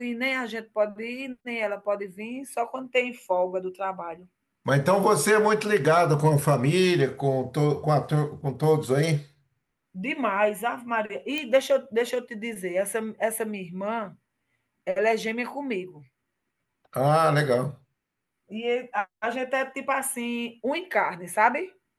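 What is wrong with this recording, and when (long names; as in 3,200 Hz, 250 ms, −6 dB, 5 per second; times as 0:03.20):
0:11.38: click −15 dBFS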